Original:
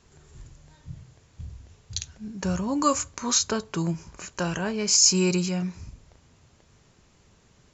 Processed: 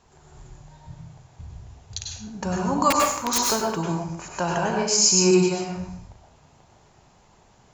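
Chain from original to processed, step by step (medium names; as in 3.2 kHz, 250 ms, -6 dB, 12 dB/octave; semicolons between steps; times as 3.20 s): peaking EQ 810 Hz +11.5 dB 0.83 oct; 2.90–3.40 s: integer overflow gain 13.5 dB; plate-style reverb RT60 0.63 s, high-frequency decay 0.8×, pre-delay 85 ms, DRR -0.5 dB; trim -2 dB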